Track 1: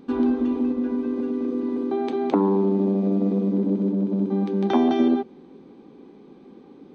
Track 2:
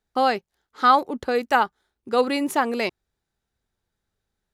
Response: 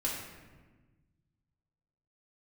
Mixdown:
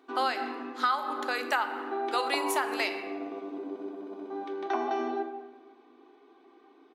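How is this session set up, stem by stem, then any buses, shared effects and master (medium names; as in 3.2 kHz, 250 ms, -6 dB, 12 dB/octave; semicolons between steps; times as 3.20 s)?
-4.0 dB, 0.00 s, send -4.5 dB, treble shelf 2.7 kHz -12 dB; comb 2.7 ms, depth 88%
-2.0 dB, 0.00 s, send -8 dB, none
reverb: on, RT60 1.3 s, pre-delay 3 ms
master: high-pass 930 Hz 12 dB/octave; compression 6:1, threshold -24 dBFS, peak gain reduction 11.5 dB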